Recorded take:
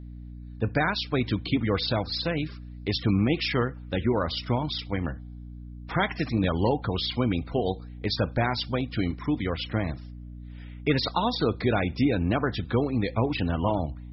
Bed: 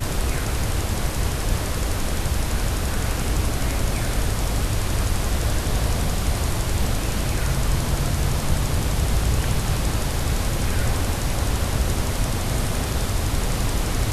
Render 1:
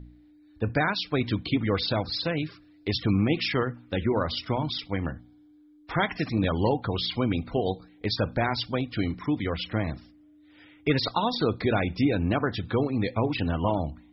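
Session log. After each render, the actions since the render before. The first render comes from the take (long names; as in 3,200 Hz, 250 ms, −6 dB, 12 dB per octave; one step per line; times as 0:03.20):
hum removal 60 Hz, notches 4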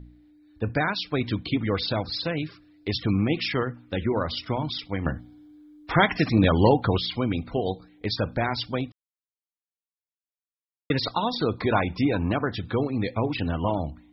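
0:05.06–0:06.98: clip gain +6 dB
0:08.92–0:10.90: silence
0:11.58–0:12.32: parametric band 1,000 Hz +13.5 dB 0.53 octaves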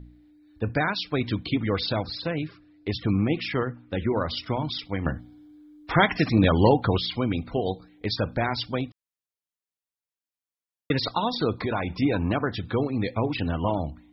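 0:02.12–0:04.00: high-shelf EQ 4,700 Hz −11.5 dB
0:11.54–0:12.02: downward compressor 2.5 to 1, threshold −24 dBFS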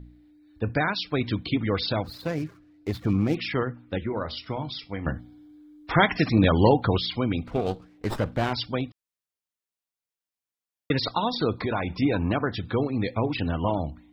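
0:02.03–0:03.35: running median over 15 samples
0:03.98–0:05.07: tuned comb filter 69 Hz, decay 0.21 s
0:07.47–0:08.53: windowed peak hold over 9 samples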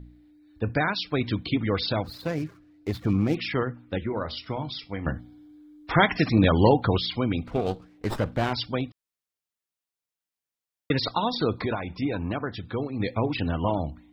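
0:11.75–0:13.00: clip gain −4.5 dB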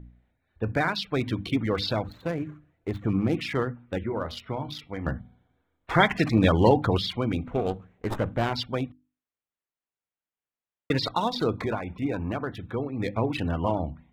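adaptive Wiener filter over 9 samples
mains-hum notches 50/100/150/200/250/300 Hz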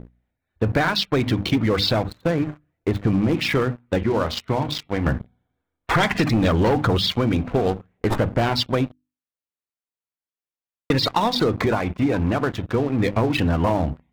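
leveller curve on the samples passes 3
downward compressor, threshold −16 dBFS, peak gain reduction 7.5 dB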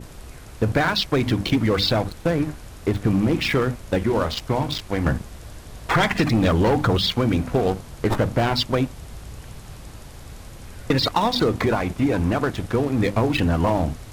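mix in bed −17 dB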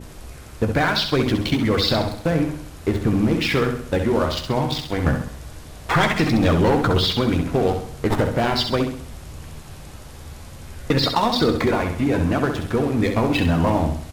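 double-tracking delay 13 ms −10.5 dB
flutter between parallel walls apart 11.3 metres, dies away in 0.56 s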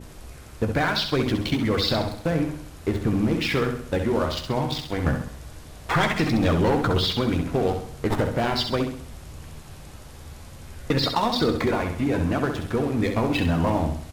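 level −3.5 dB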